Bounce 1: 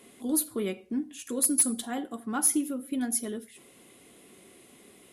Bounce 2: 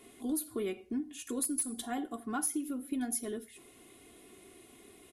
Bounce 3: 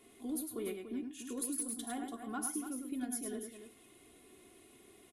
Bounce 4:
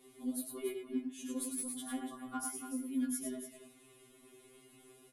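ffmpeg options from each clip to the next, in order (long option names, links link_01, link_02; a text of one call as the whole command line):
ffmpeg -i in.wav -af "lowshelf=frequency=100:gain=9,aecho=1:1:2.8:0.49,acompressor=threshold=-27dB:ratio=6,volume=-3.5dB" out.wav
ffmpeg -i in.wav -af "aecho=1:1:104|289:0.531|0.335,volume=-5.5dB" out.wav
ffmpeg -i in.wav -af "afftfilt=real='re*2.45*eq(mod(b,6),0)':imag='im*2.45*eq(mod(b,6),0)':win_size=2048:overlap=0.75,volume=2dB" out.wav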